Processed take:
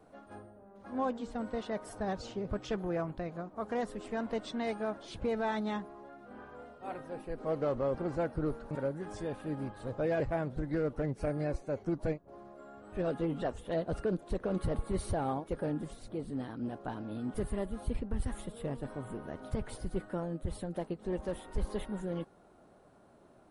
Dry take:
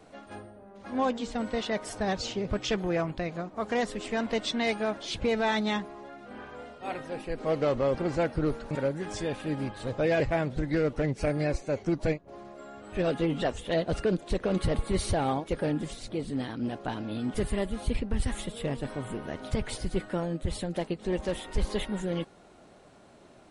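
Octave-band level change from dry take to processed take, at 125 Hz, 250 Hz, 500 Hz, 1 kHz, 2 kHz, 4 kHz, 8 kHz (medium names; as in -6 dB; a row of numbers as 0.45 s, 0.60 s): -5.5 dB, -5.5 dB, -5.5 dB, -5.5 dB, -10.0 dB, -14.0 dB, -10.5 dB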